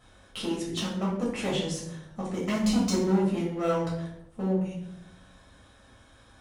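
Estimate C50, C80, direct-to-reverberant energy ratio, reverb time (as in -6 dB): 4.0 dB, 7.0 dB, -6.0 dB, 0.85 s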